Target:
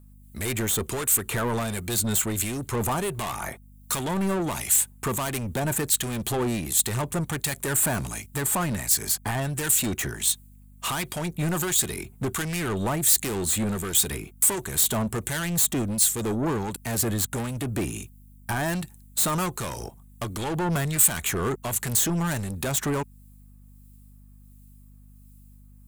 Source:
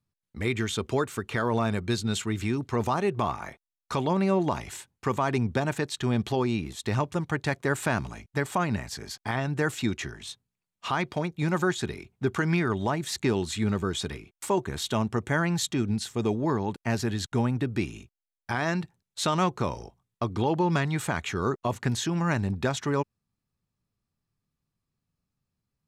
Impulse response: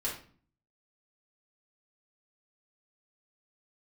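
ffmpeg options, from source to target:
-filter_complex "[0:a]highshelf=f=4.2k:g=6,asplit=2[a][b];[b]acompressor=threshold=-37dB:ratio=6,volume=-1dB[c];[a][c]amix=inputs=2:normalize=0,asoftclip=type=tanh:threshold=-28dB,acrossover=split=1900[d][e];[d]aeval=exprs='val(0)*(1-0.5/2+0.5/2*cos(2*PI*1.4*n/s))':c=same[f];[e]aeval=exprs='val(0)*(1-0.5/2-0.5/2*cos(2*PI*1.4*n/s))':c=same[g];[f][g]amix=inputs=2:normalize=0,aexciter=amount=2.7:drive=9.6:freq=7.5k,aeval=exprs='val(0)+0.00178*(sin(2*PI*50*n/s)+sin(2*PI*2*50*n/s)/2+sin(2*PI*3*50*n/s)/3+sin(2*PI*4*50*n/s)/4+sin(2*PI*5*50*n/s)/5)':c=same,volume=6dB"

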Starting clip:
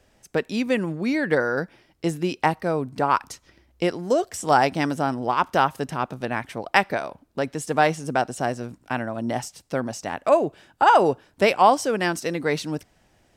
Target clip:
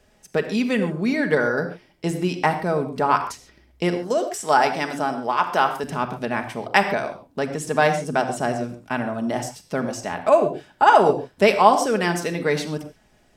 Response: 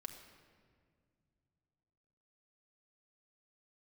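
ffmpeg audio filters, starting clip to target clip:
-filter_complex "[0:a]asettb=1/sr,asplit=3[a][b][c];[a]atrim=end=3.974[d];[b]atrim=start=3.97:end=5.84,asetpts=PTS-STARTPTS,afade=t=in:d=0.004:c=qsin,afade=t=out:st=1.866:d=0.004:c=qsin,highpass=f=390:p=1[e];[c]atrim=start=5.836[f];[d][e]acrossfade=d=0.004:c1=hsin:c2=qsin[g];[g][f]acrossfade=d=0.004:c1=qsin:c2=hsin[h];[1:a]atrim=start_sample=2205,atrim=end_sample=6615[i];[h][i]afir=irnorm=-1:irlink=0,volume=6dB"

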